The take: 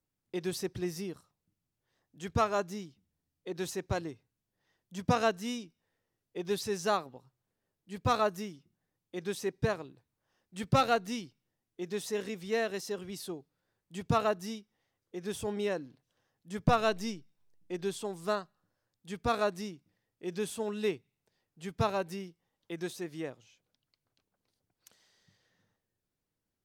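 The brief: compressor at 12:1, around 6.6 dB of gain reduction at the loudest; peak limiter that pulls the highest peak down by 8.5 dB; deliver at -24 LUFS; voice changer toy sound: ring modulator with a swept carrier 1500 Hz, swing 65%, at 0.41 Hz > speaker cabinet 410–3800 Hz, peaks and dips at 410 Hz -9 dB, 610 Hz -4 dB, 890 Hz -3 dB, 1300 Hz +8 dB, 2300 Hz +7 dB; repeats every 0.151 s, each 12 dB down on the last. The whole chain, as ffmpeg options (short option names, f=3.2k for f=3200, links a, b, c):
-af "acompressor=threshold=-28dB:ratio=12,alimiter=level_in=2dB:limit=-24dB:level=0:latency=1,volume=-2dB,aecho=1:1:151|302|453:0.251|0.0628|0.0157,aeval=exprs='val(0)*sin(2*PI*1500*n/s+1500*0.65/0.41*sin(2*PI*0.41*n/s))':c=same,highpass=410,equalizer=f=410:t=q:w=4:g=-9,equalizer=f=610:t=q:w=4:g=-4,equalizer=f=890:t=q:w=4:g=-3,equalizer=f=1.3k:t=q:w=4:g=8,equalizer=f=2.3k:t=q:w=4:g=7,lowpass=f=3.8k:w=0.5412,lowpass=f=3.8k:w=1.3066,volume=13dB"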